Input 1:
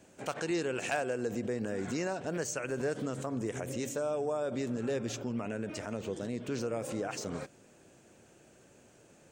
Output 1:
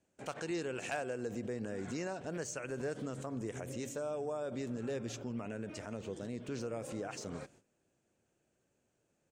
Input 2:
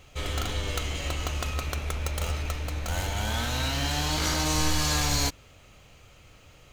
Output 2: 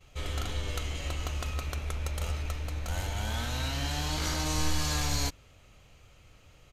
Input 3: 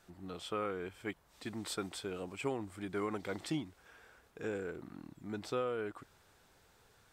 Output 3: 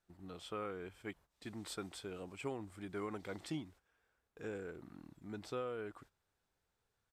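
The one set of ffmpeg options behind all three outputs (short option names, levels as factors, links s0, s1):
-af "aresample=32000,aresample=44100,agate=range=0.2:threshold=0.00178:ratio=16:detection=peak,lowshelf=f=92:g=5,volume=0.531"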